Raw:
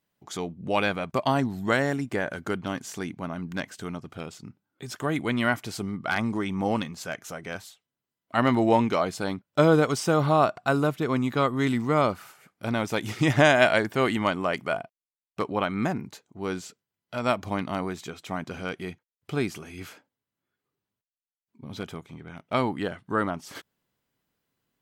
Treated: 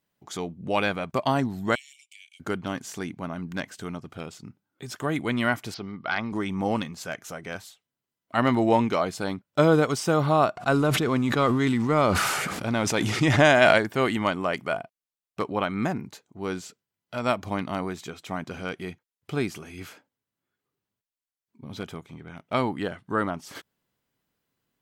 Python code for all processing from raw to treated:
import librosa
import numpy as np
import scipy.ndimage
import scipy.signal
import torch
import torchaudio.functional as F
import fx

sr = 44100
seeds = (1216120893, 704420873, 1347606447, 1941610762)

y = fx.chain(x, sr, fx.cheby_ripple_highpass(hz=2200.0, ripple_db=9),
    fx.high_shelf(hz=5400.0, db=-5.0), at=(1.75, 2.4))
y = fx.chain(y, sr, fx.steep_lowpass(hz=5300.0, slope=48),
    fx.low_shelf(hz=340.0, db=-7.0), at=(5.74, 6.32))
y = fx.chain(y, sr, fx.law_mismatch(coded='mu'),
    fx.lowpass(hz=10000.0, slope=12),
    fx.sustainer(db_per_s=23.0), at=(10.57, 13.78))